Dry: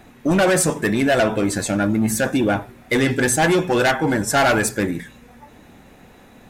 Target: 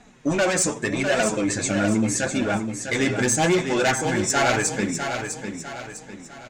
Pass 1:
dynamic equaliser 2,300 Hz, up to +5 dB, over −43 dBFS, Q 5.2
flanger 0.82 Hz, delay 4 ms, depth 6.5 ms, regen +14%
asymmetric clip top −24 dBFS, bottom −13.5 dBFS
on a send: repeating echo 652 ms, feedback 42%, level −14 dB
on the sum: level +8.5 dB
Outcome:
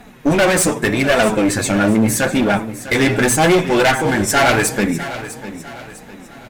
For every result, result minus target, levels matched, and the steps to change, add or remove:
echo-to-direct −6.5 dB; 8,000 Hz band −4.0 dB
change: repeating echo 652 ms, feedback 42%, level −7.5 dB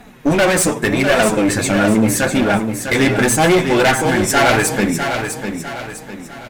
8,000 Hz band −3.5 dB
add after dynamic equaliser: transistor ladder low-pass 7,900 Hz, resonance 55%

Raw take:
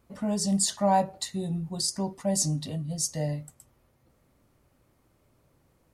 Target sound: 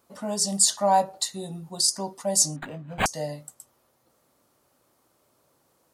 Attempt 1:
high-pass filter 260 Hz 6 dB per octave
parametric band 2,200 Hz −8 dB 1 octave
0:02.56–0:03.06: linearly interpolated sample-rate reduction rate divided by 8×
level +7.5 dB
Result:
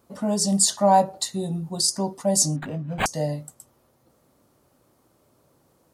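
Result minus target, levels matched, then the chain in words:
250 Hz band +7.0 dB
high-pass filter 850 Hz 6 dB per octave
parametric band 2,200 Hz −8 dB 1 octave
0:02.56–0:03.06: linearly interpolated sample-rate reduction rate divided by 8×
level +7.5 dB

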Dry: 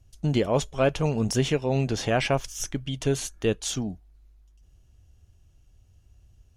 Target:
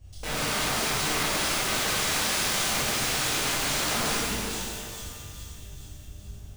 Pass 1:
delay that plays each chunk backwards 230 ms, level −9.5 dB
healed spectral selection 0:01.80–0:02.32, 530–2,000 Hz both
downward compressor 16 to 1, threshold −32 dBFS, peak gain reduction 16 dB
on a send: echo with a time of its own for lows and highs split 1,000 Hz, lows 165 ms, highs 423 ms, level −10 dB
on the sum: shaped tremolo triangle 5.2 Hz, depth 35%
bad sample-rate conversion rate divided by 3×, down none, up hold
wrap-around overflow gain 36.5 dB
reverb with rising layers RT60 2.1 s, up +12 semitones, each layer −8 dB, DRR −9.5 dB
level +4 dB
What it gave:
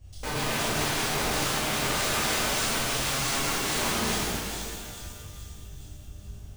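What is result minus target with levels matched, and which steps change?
downward compressor: peak gain reduction +6 dB
change: downward compressor 16 to 1, threshold −25.5 dBFS, peak gain reduction 10 dB

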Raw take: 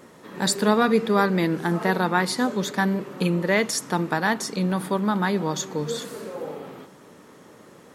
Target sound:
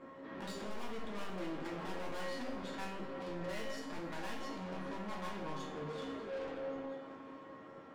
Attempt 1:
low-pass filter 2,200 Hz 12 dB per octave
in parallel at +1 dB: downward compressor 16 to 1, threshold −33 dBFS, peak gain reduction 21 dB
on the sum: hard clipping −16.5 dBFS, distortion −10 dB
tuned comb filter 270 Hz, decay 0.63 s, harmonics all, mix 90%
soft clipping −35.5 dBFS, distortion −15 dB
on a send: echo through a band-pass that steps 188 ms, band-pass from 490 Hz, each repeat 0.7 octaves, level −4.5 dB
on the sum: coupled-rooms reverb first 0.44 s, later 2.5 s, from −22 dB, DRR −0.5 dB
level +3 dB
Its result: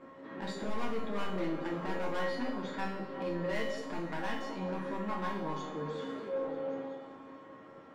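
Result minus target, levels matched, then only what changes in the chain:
downward compressor: peak gain reduction +6.5 dB; soft clipping: distortion −9 dB
change: downward compressor 16 to 1, threshold −26 dBFS, peak gain reduction 14.5 dB
change: soft clipping −46.5 dBFS, distortion −5 dB

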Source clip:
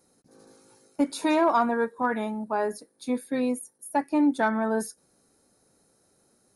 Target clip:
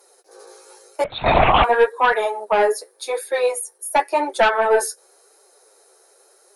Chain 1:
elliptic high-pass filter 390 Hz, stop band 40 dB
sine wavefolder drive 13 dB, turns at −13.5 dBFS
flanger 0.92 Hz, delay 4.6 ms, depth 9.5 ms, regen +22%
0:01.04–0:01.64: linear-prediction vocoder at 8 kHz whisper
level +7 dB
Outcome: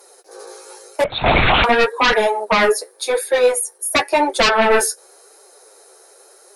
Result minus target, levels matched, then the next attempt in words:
sine wavefolder: distortion +14 dB
elliptic high-pass filter 390 Hz, stop band 40 dB
sine wavefolder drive 6 dB, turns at −13.5 dBFS
flanger 0.92 Hz, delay 4.6 ms, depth 9.5 ms, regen +22%
0:01.04–0:01.64: linear-prediction vocoder at 8 kHz whisper
level +7 dB

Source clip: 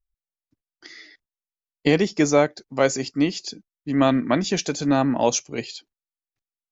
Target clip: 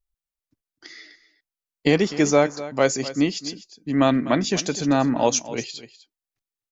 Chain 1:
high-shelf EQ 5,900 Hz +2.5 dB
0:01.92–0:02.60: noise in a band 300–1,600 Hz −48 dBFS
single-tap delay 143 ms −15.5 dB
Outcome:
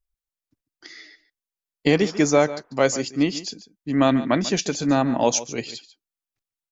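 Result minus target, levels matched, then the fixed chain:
echo 107 ms early
high-shelf EQ 5,900 Hz +2.5 dB
0:01.92–0:02.60: noise in a band 300–1,600 Hz −48 dBFS
single-tap delay 250 ms −15.5 dB

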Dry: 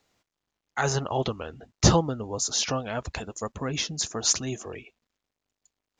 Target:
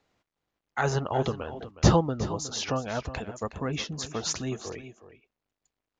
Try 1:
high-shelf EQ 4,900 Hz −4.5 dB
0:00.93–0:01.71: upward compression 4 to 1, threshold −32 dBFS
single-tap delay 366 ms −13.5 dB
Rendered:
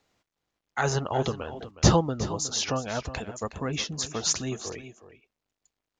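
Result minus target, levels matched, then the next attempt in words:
8,000 Hz band +4.5 dB
high-shelf EQ 4,900 Hz −13.5 dB
0:00.93–0:01.71: upward compression 4 to 1, threshold −32 dBFS
single-tap delay 366 ms −13.5 dB

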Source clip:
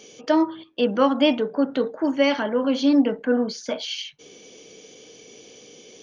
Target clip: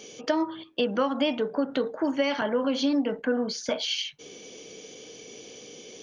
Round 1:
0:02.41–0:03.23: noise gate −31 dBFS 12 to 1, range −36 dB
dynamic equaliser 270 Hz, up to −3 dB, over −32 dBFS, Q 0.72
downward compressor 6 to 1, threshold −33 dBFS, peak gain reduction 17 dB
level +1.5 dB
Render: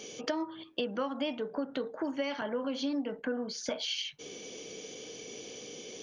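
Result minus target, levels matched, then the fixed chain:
downward compressor: peak gain reduction +8.5 dB
0:02.41–0:03.23: noise gate −31 dBFS 12 to 1, range −36 dB
dynamic equaliser 270 Hz, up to −3 dB, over −32 dBFS, Q 0.72
downward compressor 6 to 1, threshold −23 dBFS, peak gain reduction 9 dB
level +1.5 dB

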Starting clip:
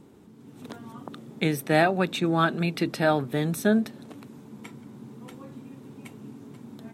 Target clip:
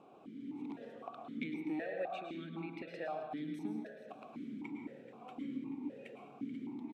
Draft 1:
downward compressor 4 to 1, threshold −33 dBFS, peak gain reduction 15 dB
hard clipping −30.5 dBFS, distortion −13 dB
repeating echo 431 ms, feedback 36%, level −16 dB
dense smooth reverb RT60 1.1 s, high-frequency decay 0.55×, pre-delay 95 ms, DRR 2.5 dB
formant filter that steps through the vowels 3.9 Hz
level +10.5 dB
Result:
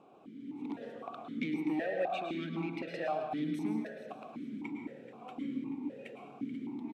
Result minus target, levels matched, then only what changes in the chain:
downward compressor: peak gain reduction −8 dB
change: downward compressor 4 to 1, threshold −43.5 dBFS, peak gain reduction 23 dB

